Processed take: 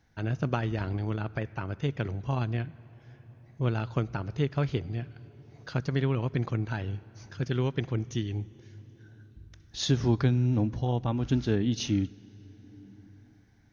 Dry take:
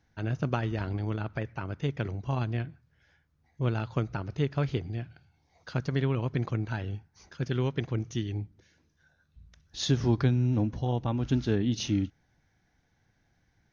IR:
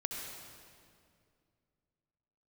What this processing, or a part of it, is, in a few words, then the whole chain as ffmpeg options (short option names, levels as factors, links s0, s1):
ducked reverb: -filter_complex "[0:a]asplit=3[s0][s1][s2];[1:a]atrim=start_sample=2205[s3];[s1][s3]afir=irnorm=-1:irlink=0[s4];[s2]apad=whole_len=605242[s5];[s4][s5]sidechaincompress=threshold=0.00562:ratio=3:attack=9.7:release=632,volume=0.473[s6];[s0][s6]amix=inputs=2:normalize=0"